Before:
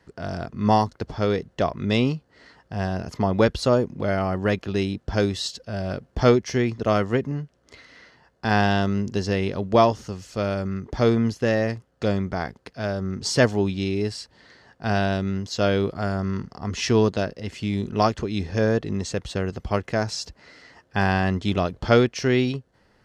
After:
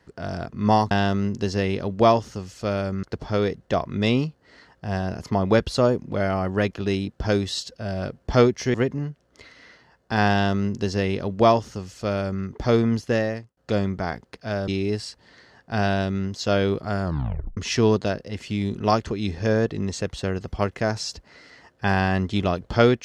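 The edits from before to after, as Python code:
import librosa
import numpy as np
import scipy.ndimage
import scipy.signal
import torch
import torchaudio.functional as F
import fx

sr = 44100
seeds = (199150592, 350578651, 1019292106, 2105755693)

y = fx.edit(x, sr, fx.cut(start_s=6.62, length_s=0.45),
    fx.duplicate(start_s=8.64, length_s=2.12, to_s=0.91),
    fx.fade_out_span(start_s=11.47, length_s=0.43),
    fx.cut(start_s=13.01, length_s=0.79),
    fx.tape_stop(start_s=16.16, length_s=0.53), tone=tone)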